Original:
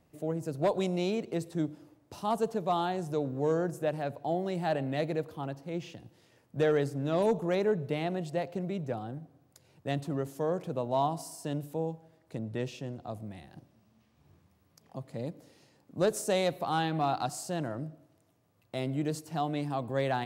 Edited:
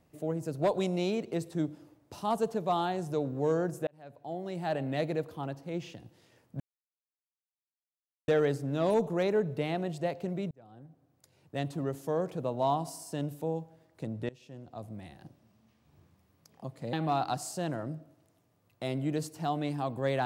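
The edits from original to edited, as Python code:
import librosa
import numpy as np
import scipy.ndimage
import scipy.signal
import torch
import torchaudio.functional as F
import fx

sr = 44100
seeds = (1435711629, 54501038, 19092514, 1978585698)

y = fx.edit(x, sr, fx.fade_in_span(start_s=3.87, length_s=1.05),
    fx.insert_silence(at_s=6.6, length_s=1.68),
    fx.fade_in_span(start_s=8.83, length_s=1.71, curve='qsin'),
    fx.fade_in_from(start_s=12.61, length_s=0.76, floor_db=-22.5),
    fx.cut(start_s=15.25, length_s=1.6), tone=tone)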